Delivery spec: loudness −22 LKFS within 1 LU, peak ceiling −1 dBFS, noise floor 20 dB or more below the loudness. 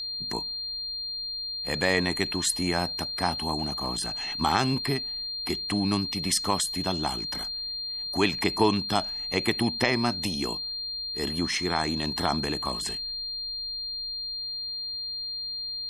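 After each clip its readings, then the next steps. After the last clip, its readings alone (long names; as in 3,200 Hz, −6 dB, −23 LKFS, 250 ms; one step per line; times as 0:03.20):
interfering tone 4,200 Hz; level of the tone −31 dBFS; integrated loudness −27.5 LKFS; sample peak −7.0 dBFS; target loudness −22.0 LKFS
→ notch filter 4,200 Hz, Q 30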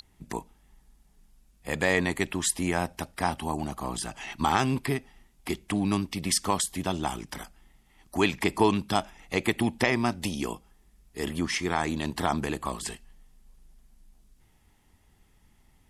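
interfering tone none found; integrated loudness −29.0 LKFS; sample peak −7.0 dBFS; target loudness −22.0 LKFS
→ level +7 dB
brickwall limiter −1 dBFS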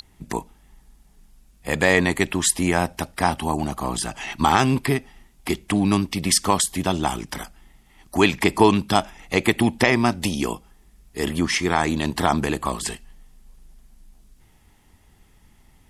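integrated loudness −22.0 LKFS; sample peak −1.0 dBFS; background noise floor −56 dBFS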